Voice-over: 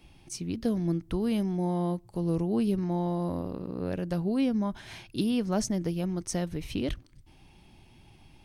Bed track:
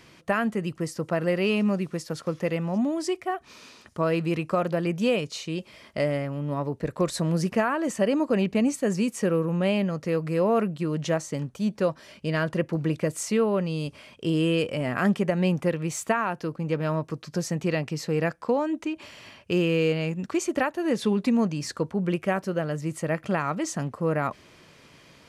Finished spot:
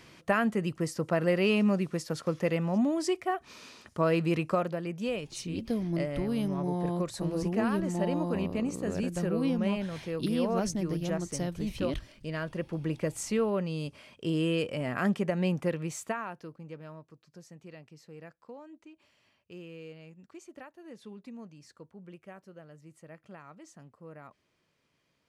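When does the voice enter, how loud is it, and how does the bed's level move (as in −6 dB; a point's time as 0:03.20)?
5.05 s, −3.0 dB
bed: 0:04.50 −1.5 dB
0:04.80 −9 dB
0:12.55 −9 dB
0:13.02 −5 dB
0:15.79 −5 dB
0:17.14 −22.5 dB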